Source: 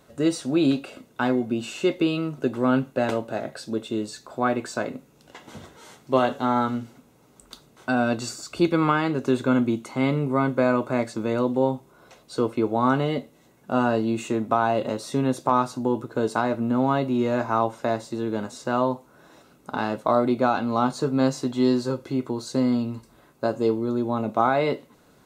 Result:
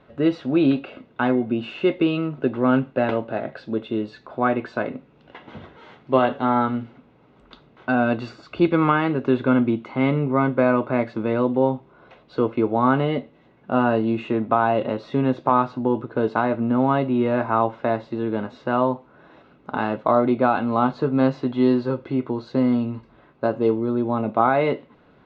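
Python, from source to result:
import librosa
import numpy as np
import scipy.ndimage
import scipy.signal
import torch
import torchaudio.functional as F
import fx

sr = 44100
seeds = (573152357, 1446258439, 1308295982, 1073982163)

y = scipy.signal.sosfilt(scipy.signal.butter(4, 3200.0, 'lowpass', fs=sr, output='sos'), x)
y = y * 10.0 ** (2.5 / 20.0)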